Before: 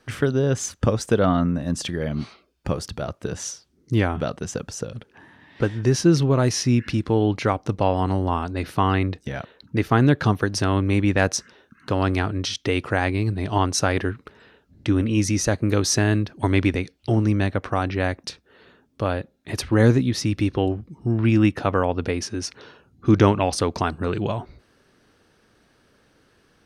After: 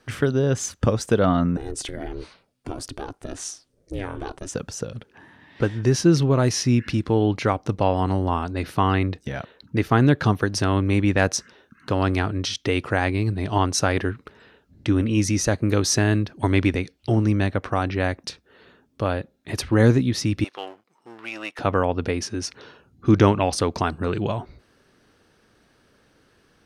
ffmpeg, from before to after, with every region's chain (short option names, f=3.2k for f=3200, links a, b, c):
-filter_complex "[0:a]asettb=1/sr,asplit=3[a][b][c];[a]atrim=end=1.574[d];[b]atrim=start=1.57:end=4.54,asetpts=PTS-STARTPTS,afade=t=in:d=0.004:c=qsin,afade=t=out:st=2.966:d=0.004:c=qsin,acompressor=threshold=-25dB:ratio=2.5:attack=3.2:release=140:knee=1:detection=peak,equalizer=f=9k:w=2.5:g=8,aeval=exprs='val(0)*sin(2*PI*190*n/s)':c=same[e];[c]atrim=start=4.536[f];[d][e]acrossfade=d=0.004:c1=hsin:c2=qsin[g];[g][f]acrossfade=d=0.004:c1=qsin:c2=hsin,asettb=1/sr,asplit=3[h][i][j];[h]atrim=end=20.444[k];[i]atrim=start=20.44:end=21.59,asetpts=PTS-STARTPTS,afade=t=in:d=0.004:c=qsin,afade=t=out:st=1.146:d=0.004:c=qsin,aeval=exprs='if(lt(val(0),0),0.447*val(0),val(0))':c=same,highpass=900[l];[j]atrim=start=21.586[m];[k][l]acrossfade=d=0.004:c1=hsin:c2=qsin[n];[n][m]acrossfade=d=0.004:c1=qsin:c2=hsin"